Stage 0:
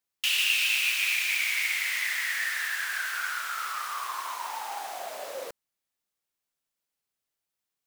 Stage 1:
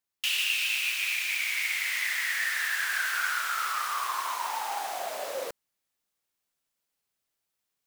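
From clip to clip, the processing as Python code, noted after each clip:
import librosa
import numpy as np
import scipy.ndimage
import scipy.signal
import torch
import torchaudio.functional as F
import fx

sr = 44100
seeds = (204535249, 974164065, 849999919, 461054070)

y = fx.rider(x, sr, range_db=3, speed_s=0.5)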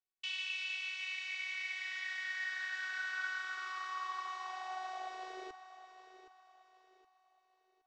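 y = scipy.signal.sosfilt(scipy.signal.bessel(8, 3900.0, 'lowpass', norm='mag', fs=sr, output='sos'), x)
y = fx.robotise(y, sr, hz=373.0)
y = fx.echo_feedback(y, sr, ms=769, feedback_pct=37, wet_db=-12.5)
y = y * librosa.db_to_amplitude(-7.5)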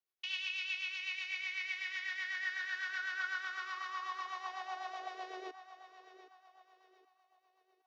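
y = scipy.signal.sosfilt(scipy.signal.butter(4, 280.0, 'highpass', fs=sr, output='sos'), x)
y = fx.peak_eq(y, sr, hz=8000.0, db=-15.0, octaves=0.3)
y = fx.rotary(y, sr, hz=8.0)
y = y * librosa.db_to_amplitude(3.5)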